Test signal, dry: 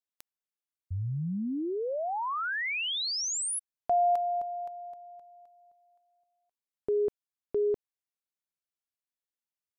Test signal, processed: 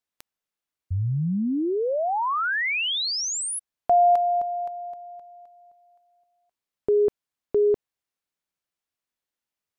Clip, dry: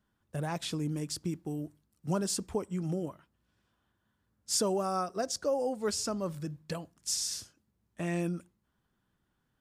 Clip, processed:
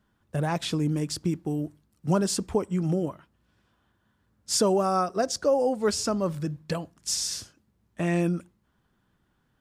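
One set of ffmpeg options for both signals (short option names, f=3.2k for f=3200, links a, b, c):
-af "highshelf=f=5.4k:g=-6,volume=7.5dB"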